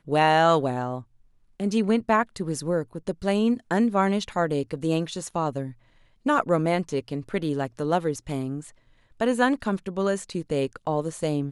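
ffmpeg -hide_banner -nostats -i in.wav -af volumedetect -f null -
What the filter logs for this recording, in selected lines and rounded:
mean_volume: -25.4 dB
max_volume: -5.7 dB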